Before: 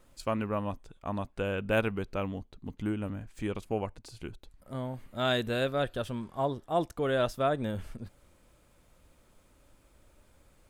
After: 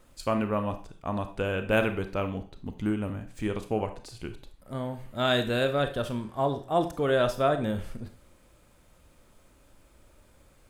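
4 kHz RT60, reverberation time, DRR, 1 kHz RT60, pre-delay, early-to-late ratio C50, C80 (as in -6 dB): 0.40 s, 0.40 s, 8.0 dB, 0.40 s, 26 ms, 12.0 dB, 16.5 dB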